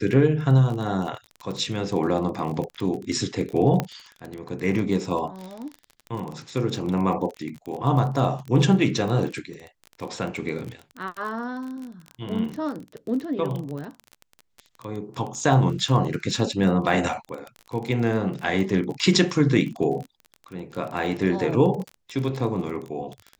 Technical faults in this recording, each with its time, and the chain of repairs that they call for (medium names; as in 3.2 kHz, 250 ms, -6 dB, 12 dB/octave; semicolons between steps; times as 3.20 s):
crackle 26 per s -29 dBFS
3.80 s: pop -10 dBFS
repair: de-click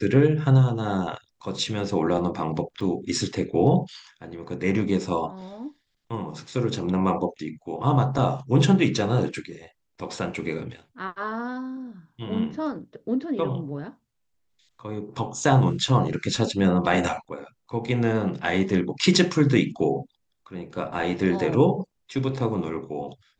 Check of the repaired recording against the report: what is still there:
nothing left